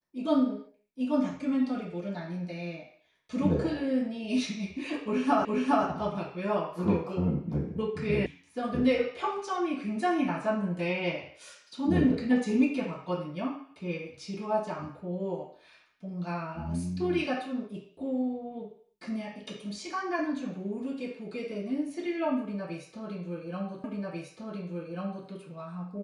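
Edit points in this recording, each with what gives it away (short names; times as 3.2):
5.45 repeat of the last 0.41 s
8.26 sound cut off
23.84 repeat of the last 1.44 s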